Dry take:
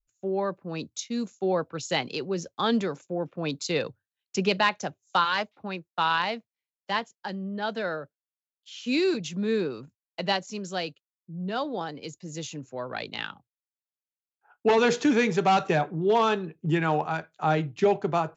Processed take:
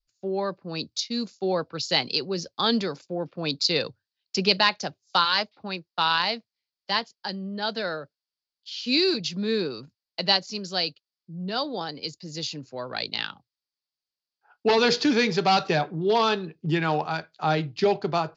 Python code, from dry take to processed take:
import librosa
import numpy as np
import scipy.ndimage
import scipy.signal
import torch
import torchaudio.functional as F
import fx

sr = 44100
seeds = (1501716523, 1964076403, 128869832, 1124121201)

y = fx.lowpass_res(x, sr, hz=4700.0, q=6.4)